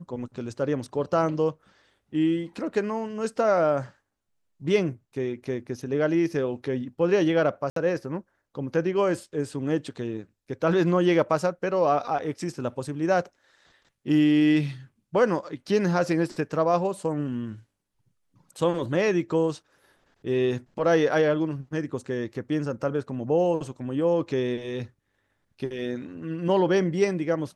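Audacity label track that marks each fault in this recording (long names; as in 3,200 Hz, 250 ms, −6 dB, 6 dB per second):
7.700000	7.760000	drop-out 63 ms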